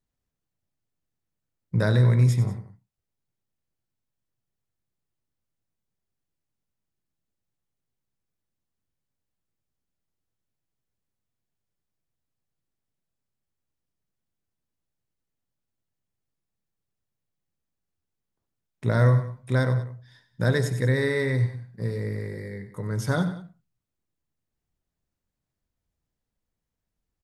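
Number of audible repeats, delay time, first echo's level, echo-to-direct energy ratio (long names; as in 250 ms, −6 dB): 2, 94 ms, −12.0 dB, −11.0 dB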